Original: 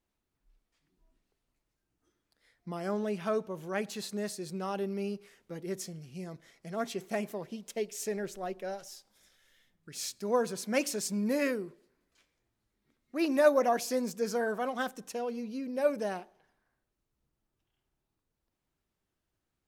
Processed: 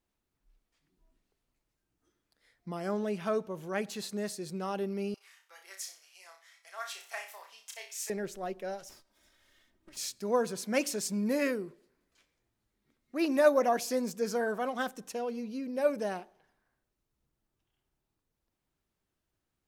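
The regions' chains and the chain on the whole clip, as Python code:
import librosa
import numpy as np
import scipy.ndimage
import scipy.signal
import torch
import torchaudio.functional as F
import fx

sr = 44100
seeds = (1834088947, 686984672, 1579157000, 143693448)

y = fx.chain(x, sr, fx.highpass(hz=900.0, slope=24),
    fx.room_flutter(wall_m=5.4, rt60_s=0.36), at=(5.14, 8.1))
y = fx.chain(y, sr, fx.lower_of_two(delay_ms=3.2),
    fx.high_shelf(hz=3900.0, db=-7.0),
    fx.band_squash(depth_pct=40), at=(8.89, 9.97))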